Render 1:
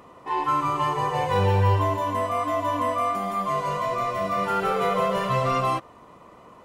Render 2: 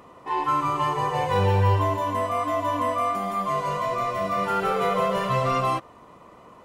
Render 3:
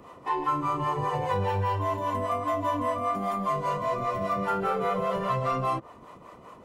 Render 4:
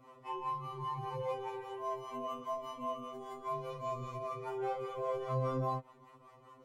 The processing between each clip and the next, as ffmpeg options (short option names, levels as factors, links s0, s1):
-af anull
-filter_complex "[0:a]acrossover=split=520|1800[s0][s1][s2];[s0]acompressor=threshold=0.0282:ratio=4[s3];[s1]acompressor=threshold=0.0355:ratio=4[s4];[s2]acompressor=threshold=0.00398:ratio=4[s5];[s3][s4][s5]amix=inputs=3:normalize=0,acrossover=split=460[s6][s7];[s6]aeval=exprs='val(0)*(1-0.7/2+0.7/2*cos(2*PI*5*n/s))':c=same[s8];[s7]aeval=exprs='val(0)*(1-0.7/2-0.7/2*cos(2*PI*5*n/s))':c=same[s9];[s8][s9]amix=inputs=2:normalize=0,volume=1.58"
-af "afftfilt=real='re*2.45*eq(mod(b,6),0)':imag='im*2.45*eq(mod(b,6),0)':win_size=2048:overlap=0.75,volume=0.376"